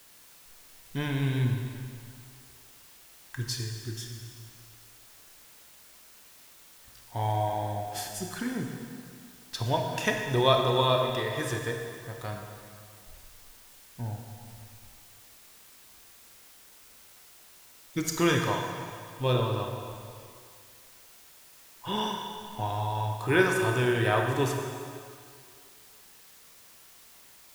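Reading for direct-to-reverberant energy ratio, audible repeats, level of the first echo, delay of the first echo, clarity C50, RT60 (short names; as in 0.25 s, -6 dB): 2.0 dB, none, none, none, 3.0 dB, 2.3 s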